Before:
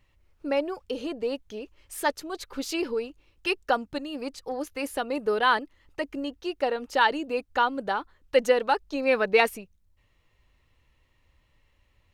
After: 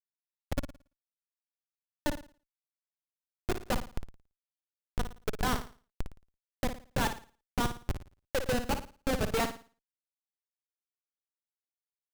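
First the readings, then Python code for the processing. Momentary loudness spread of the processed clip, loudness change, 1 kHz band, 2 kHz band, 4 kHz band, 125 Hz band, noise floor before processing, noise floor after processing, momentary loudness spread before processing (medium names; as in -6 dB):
15 LU, -7.5 dB, -11.0 dB, -11.5 dB, -8.0 dB, no reading, -67 dBFS, under -85 dBFS, 13 LU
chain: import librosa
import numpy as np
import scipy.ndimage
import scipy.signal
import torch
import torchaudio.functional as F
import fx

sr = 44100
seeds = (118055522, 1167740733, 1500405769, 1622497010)

y = fx.schmitt(x, sr, flips_db=-18.5)
y = fx.room_flutter(y, sr, wall_m=9.6, rt60_s=0.37)
y = F.gain(torch.from_numpy(y), 1.5).numpy()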